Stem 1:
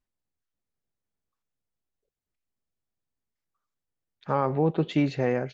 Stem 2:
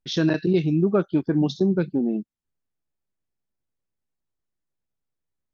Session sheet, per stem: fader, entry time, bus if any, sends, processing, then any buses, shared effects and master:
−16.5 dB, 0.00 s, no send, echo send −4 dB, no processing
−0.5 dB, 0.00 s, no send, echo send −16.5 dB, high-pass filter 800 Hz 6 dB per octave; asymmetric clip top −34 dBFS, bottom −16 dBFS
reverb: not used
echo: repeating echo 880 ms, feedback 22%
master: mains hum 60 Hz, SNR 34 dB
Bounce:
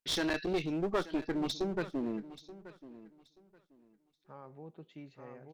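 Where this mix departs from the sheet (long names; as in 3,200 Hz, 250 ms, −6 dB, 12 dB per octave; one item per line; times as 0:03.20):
stem 1 −16.5 dB → −25.5 dB
master: missing mains hum 60 Hz, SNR 34 dB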